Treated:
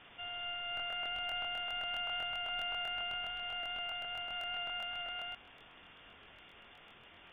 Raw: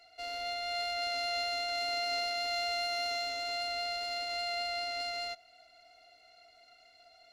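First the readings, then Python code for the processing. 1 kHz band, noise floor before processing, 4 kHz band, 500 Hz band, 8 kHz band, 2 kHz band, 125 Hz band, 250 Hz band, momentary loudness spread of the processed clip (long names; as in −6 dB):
−5.5 dB, −61 dBFS, −4.0 dB, −11.5 dB, below −20 dB, −1.5 dB, can't be measured, −4.0 dB, 20 LU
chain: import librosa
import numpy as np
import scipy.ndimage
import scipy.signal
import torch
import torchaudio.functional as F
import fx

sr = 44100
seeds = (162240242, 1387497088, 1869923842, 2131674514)

y = fx.quant_dither(x, sr, seeds[0], bits=8, dither='triangular')
y = fx.freq_invert(y, sr, carrier_hz=3500)
y = fx.buffer_crackle(y, sr, first_s=0.75, period_s=0.13, block=1024, kind='repeat')
y = y * 10.0 ** (-3.0 / 20.0)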